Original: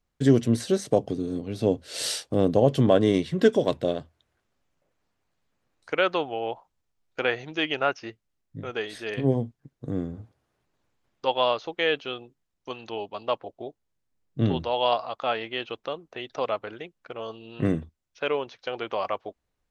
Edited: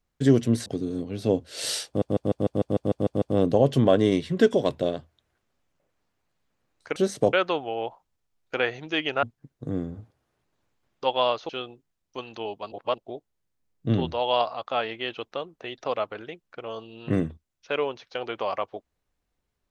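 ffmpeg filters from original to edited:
-filter_complex "[0:a]asplit=17[a][b][c][d][e][f][g][h][i][j][k][l][m][n][o][p][q];[a]atrim=end=0.662[r];[b]atrim=start=1.028:end=2.392[s];[c]atrim=start=2.238:end=2.392[t];[d]atrim=start=2.238:end=2.392[u];[e]atrim=start=2.238:end=2.392[v];[f]atrim=start=2.238:end=2.392[w];[g]atrim=start=2.238:end=2.392[x];[h]atrim=start=2.238:end=2.392[y];[i]atrim=start=2.238:end=2.392[z];[j]atrim=start=2.238:end=2.392[aa];[k]atrim=start=2.238:end=5.982[ab];[l]atrim=start=0.658:end=1.032[ac];[m]atrim=start=5.978:end=7.882[ad];[n]atrim=start=9.438:end=11.702[ae];[o]atrim=start=12.008:end=13.242[af];[p]atrim=start=13.238:end=13.502,asetpts=PTS-STARTPTS,areverse[ag];[q]atrim=start=13.498[ah];[r][s]acrossfade=d=0.004:c1=hsin:c2=hsin[ai];[ai][t]acrossfade=d=0.004:c1=hsin:c2=hsin[aj];[aj][u]acrossfade=d=0.004:c1=hsin:c2=hsin[ak];[ak][v]acrossfade=d=0.004:c1=hsin:c2=hsin[al];[al][w]acrossfade=d=0.004:c1=hsin:c2=hsin[am];[am][x]acrossfade=d=0.004:c1=hsin:c2=hsin[an];[an][y]acrossfade=d=0.004:c1=hsin:c2=hsin[ao];[ao][z]acrossfade=d=0.004:c1=hsin:c2=hsin[ap];[ap][aa]acrossfade=d=0.004:c1=hsin:c2=hsin[aq];[aq][ab]acrossfade=d=0.004:c1=hsin:c2=hsin[ar];[ar][ac]acrossfade=d=0.004:c1=hsin:c2=hsin[as];[as][ad]acrossfade=d=0.004:c1=hsin:c2=hsin[at];[at][ae]acrossfade=d=0.004:c1=hsin:c2=hsin[au];[au][af]acrossfade=d=0.004:c1=hsin:c2=hsin[av];[av][ag]acrossfade=d=0.004:c1=hsin:c2=hsin[aw];[aw][ah]acrossfade=d=0.004:c1=hsin:c2=hsin"

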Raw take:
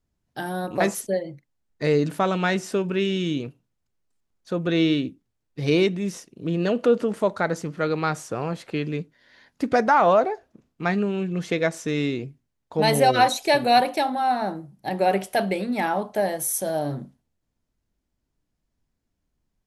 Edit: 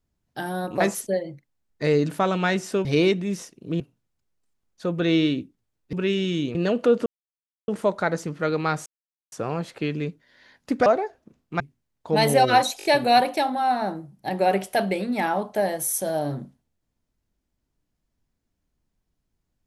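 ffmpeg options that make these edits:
-filter_complex "[0:a]asplit=12[a][b][c][d][e][f][g][h][i][j][k][l];[a]atrim=end=2.852[m];[b]atrim=start=5.598:end=6.552[n];[c]atrim=start=3.468:end=5.602[o];[d]atrim=start=2.848:end=3.472[p];[e]atrim=start=6.548:end=7.06,asetpts=PTS-STARTPTS,afade=t=out:st=0.508:d=0.004:c=hsin,apad=pad_dur=0.62[q];[f]atrim=start=7.06:end=8.24,asetpts=PTS-STARTPTS,afade=t=in:d=0.004:c=hsin,afade=t=out:st=1.176:d=0.004:c=hsin,apad=pad_dur=0.46[r];[g]atrim=start=8.24:end=9.782,asetpts=PTS-STARTPTS,afade=t=in:d=0.004:c=hsin[s];[h]atrim=start=10.138:end=10.882[t];[i]atrim=start=12.258:end=13.462[u];[j]atrim=start=13.438:end=13.462[v];[k]atrim=start=13.438:end=13.462[w];[l]atrim=start=13.438[x];[m][n]acrossfade=d=0.004:c1=hsin:c2=hsin[y];[y][o]acrossfade=d=0.004:c1=hsin:c2=hsin[z];[z][p]acrossfade=d=0.004:c1=hsin:c2=hsin[aa];[q][r][s]concat=n=3:v=0:a=1[ab];[aa][ab]acrossfade=d=0.004:c1=hsin:c2=hsin[ac];[ac][t]acrossfade=d=0.004:c1=hsin:c2=hsin[ad];[ad][u]acrossfade=d=0.004:c1=hsin:c2=hsin[ae];[ae][v]acrossfade=d=0.004:c1=hsin:c2=hsin[af];[af][w]acrossfade=d=0.004:c1=hsin:c2=hsin[ag];[ag][x]acrossfade=d=0.004:c1=hsin:c2=hsin"

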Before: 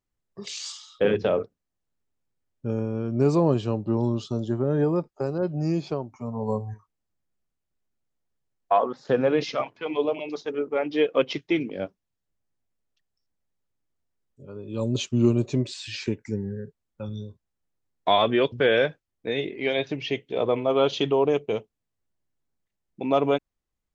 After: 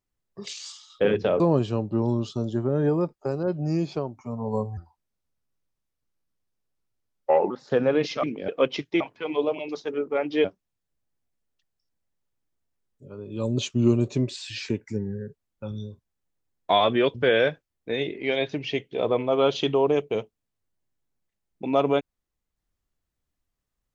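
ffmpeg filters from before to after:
-filter_complex "[0:a]asplit=10[a][b][c][d][e][f][g][h][i][j];[a]atrim=end=0.532[k];[b]atrim=start=0.528:end=0.902,asetpts=PTS-STARTPTS,volume=-4dB[l];[c]atrim=start=0.898:end=1.402[m];[d]atrim=start=3.348:end=6.724[n];[e]atrim=start=6.72:end=8.88,asetpts=PTS-STARTPTS,asetrate=34839,aresample=44100,atrim=end_sample=120577,asetpts=PTS-STARTPTS[o];[f]atrim=start=8.876:end=9.612[p];[g]atrim=start=11.568:end=11.822[q];[h]atrim=start=11.048:end=11.572[r];[i]atrim=start=9.608:end=11.052[s];[j]atrim=start=11.818[t];[k][l]acrossfade=d=0.004:c1=hsin:c2=hsin[u];[u][m]acrossfade=d=0.004:c1=hsin:c2=hsin[v];[v][n]acrossfade=d=0.004:c1=hsin:c2=hsin[w];[w][o]acrossfade=d=0.004:c1=hsin:c2=hsin[x];[x][p]acrossfade=d=0.004:c1=hsin:c2=hsin[y];[y][q]acrossfade=d=0.004:c1=hsin:c2=hsin[z];[z][r]acrossfade=d=0.004:c1=hsin:c2=hsin[aa];[aa][s]acrossfade=d=0.004:c1=hsin:c2=hsin[ab];[ab][t]acrossfade=d=0.004:c1=hsin:c2=hsin"

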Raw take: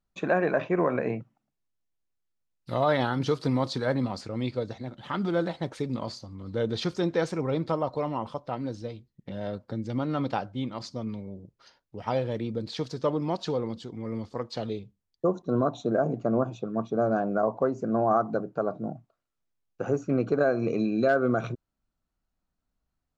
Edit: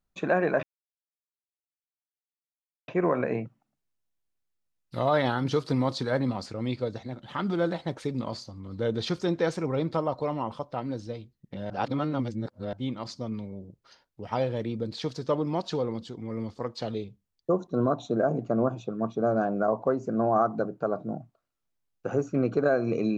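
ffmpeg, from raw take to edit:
-filter_complex "[0:a]asplit=4[a][b][c][d];[a]atrim=end=0.63,asetpts=PTS-STARTPTS,afade=t=out:st=0.626:d=0.004:c=hsin,apad=pad_dur=2.25[e];[b]atrim=start=0.63:end=9.452,asetpts=PTS-STARTPTS,afade=t=in:d=0.004:c=hsin[f];[c]atrim=start=9.448:end=10.482,asetpts=PTS-STARTPTS,areverse[g];[d]atrim=start=10.478[h];[e][f]concat=n=2:v=0:a=1[i];[i][g]acrossfade=d=0.004:c1=hsin:c2=hsin[j];[j][h]acrossfade=d=0.004:c1=hsin:c2=hsin"

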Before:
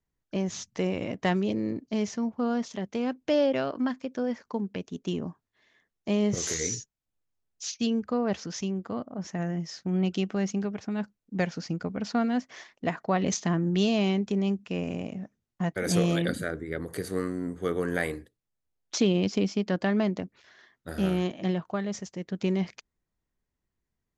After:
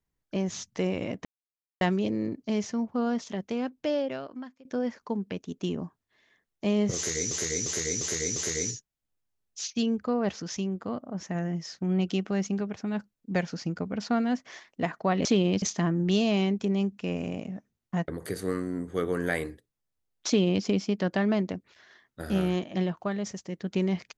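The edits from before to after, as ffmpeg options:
-filter_complex "[0:a]asplit=10[a][b][c][d][e][f][g][h][i][j];[a]atrim=end=1.25,asetpts=PTS-STARTPTS,afade=t=out:st=1.246:d=0.004:c=hsin,apad=pad_dur=0.56[k];[b]atrim=start=1.25:end=4.09,asetpts=PTS-STARTPTS,afade=t=in:d=0.004:c=hsin,afade=t=out:st=1.6:d=1.24:silence=0.0794328[l];[c]atrim=start=4.09:end=6.752,asetpts=PTS-STARTPTS,afade=t=in:d=0.004:c=hsin:silence=0.0794328[m];[d]atrim=start=6.398:end=6.752[n];[e]atrim=start=6.398:end=6.752[o];[f]atrim=start=6.398:end=6.752[p];[g]atrim=start=6.398:end=13.292[q];[h]atrim=start=18.948:end=19.322[r];[i]atrim=start=13.288:end=15.752[s];[j]atrim=start=16.758[t];[k][l][m]concat=n=3:v=0:a=1[u];[u][n]acrossfade=d=0.004:c1=hsin:c2=hsin[v];[v][o]acrossfade=d=0.004:c1=hsin:c2=hsin[w];[w][p]acrossfade=d=0.004:c1=hsin:c2=hsin[x];[x][q]acrossfade=d=0.004:c1=hsin:c2=hsin[y];[y][r]acrossfade=d=0.004:c1=hsin:c2=hsin[z];[z][s]acrossfade=d=0.004:c1=hsin:c2=hsin[aa];[aa][t]acrossfade=d=0.004:c1=hsin:c2=hsin"

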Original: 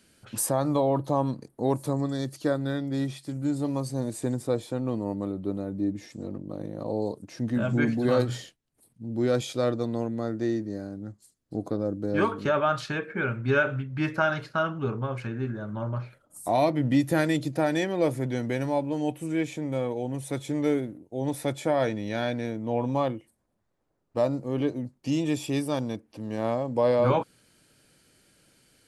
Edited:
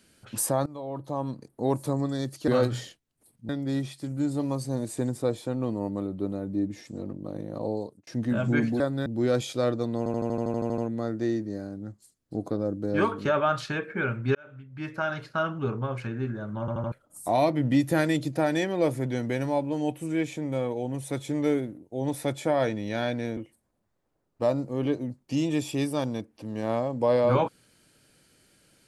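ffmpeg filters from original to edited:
-filter_complex "[0:a]asplit=23[a][b][c][d][e][f][g][h][i][j][k][l][m][n][o][p][q][r][s][t][u][v][w];[a]atrim=end=0.66,asetpts=PTS-STARTPTS,afade=t=out:st=0.656:d=0.004:c=hsin:silence=0.0891251[x];[b]atrim=start=0.66:end=2.482,asetpts=PTS-STARTPTS,afade=t=in:d=1.09:silence=0.0891251[y];[c]atrim=start=8.048:end=9.062[z];[d]atrim=start=2.738:end=7.32,asetpts=PTS-STARTPTS,afade=t=out:st=4.182:d=0.4[aa];[e]atrim=start=7.32:end=8.052,asetpts=PTS-STARTPTS,afade=t=in:d=0.004:c=hsin[ab];[f]atrim=start=2.478:end=2.742[ac];[g]atrim=start=9.058:end=10.062[ad];[h]atrim=start=9.978:end=10.062[ae];[i]atrim=start=9.978:end=10.062[af];[j]atrim=start=9.978:end=10.062[ag];[k]atrim=start=9.978:end=10.062[ah];[l]atrim=start=9.978:end=10.062[ai];[m]atrim=start=9.978:end=10.062[aj];[n]atrim=start=9.978:end=10.062[ak];[o]atrim=start=9.978:end=10.062[al];[p]atrim=start=9.978:end=10.062[am];[q]atrim=start=9.978:end=13.55,asetpts=PTS-STARTPTS,afade=t=out:st=3.568:d=0.004:c=hsin[an];[r]atrim=start=13.55:end=15.882,asetpts=PTS-STARTPTS,afade=t=in:d=1.2[ao];[s]atrim=start=15.798:end=15.882[ap];[t]atrim=start=15.798:end=15.882[aq];[u]atrim=start=15.798:end=15.882[ar];[v]atrim=start=16.118:end=22.572[as];[w]atrim=start=23.118[at];[x][y]concat=n=2:v=0:a=1[au];[au][z]acrossfade=d=0.004:c1=hsin:c2=hsin[av];[aa][ab]concat=n=2:v=0:a=1[aw];[av][aw]acrossfade=d=0.004:c1=hsin:c2=hsin[ax];[ax][ac]acrossfade=d=0.004:c1=hsin:c2=hsin[ay];[ay][ad]acrossfade=d=0.004:c1=hsin:c2=hsin[az];[az][ae]acrossfade=d=0.004:c1=hsin:c2=hsin[ba];[ba][af]acrossfade=d=0.004:c1=hsin:c2=hsin[bb];[bb][ag]acrossfade=d=0.004:c1=hsin:c2=hsin[bc];[bc][ah]acrossfade=d=0.004:c1=hsin:c2=hsin[bd];[bd][ai]acrossfade=d=0.004:c1=hsin:c2=hsin[be];[be][aj]acrossfade=d=0.004:c1=hsin:c2=hsin[bf];[bf][ak]acrossfade=d=0.004:c1=hsin:c2=hsin[bg];[bg][al]acrossfade=d=0.004:c1=hsin:c2=hsin[bh];[bh][am]acrossfade=d=0.004:c1=hsin:c2=hsin[bi];[an][ao]concat=n=2:v=0:a=1[bj];[bi][bj]acrossfade=d=0.004:c1=hsin:c2=hsin[bk];[bk][ap]acrossfade=d=0.004:c1=hsin:c2=hsin[bl];[bl][aq]acrossfade=d=0.004:c1=hsin:c2=hsin[bm];[bm][ar]acrossfade=d=0.004:c1=hsin:c2=hsin[bn];[bn][as]acrossfade=d=0.004:c1=hsin:c2=hsin[bo];[bo][at]acrossfade=d=0.004:c1=hsin:c2=hsin"

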